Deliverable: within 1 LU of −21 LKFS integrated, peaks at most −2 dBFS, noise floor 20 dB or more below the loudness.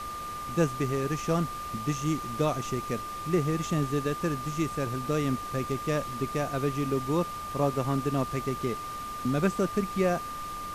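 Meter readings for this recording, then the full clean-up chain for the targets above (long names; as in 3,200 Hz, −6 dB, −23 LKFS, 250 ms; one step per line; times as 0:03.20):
interfering tone 1,200 Hz; level of the tone −35 dBFS; background noise floor −37 dBFS; target noise floor −50 dBFS; integrated loudness −30.0 LKFS; sample peak −12.5 dBFS; target loudness −21.0 LKFS
→ notch filter 1,200 Hz, Q 30
noise reduction from a noise print 13 dB
level +9 dB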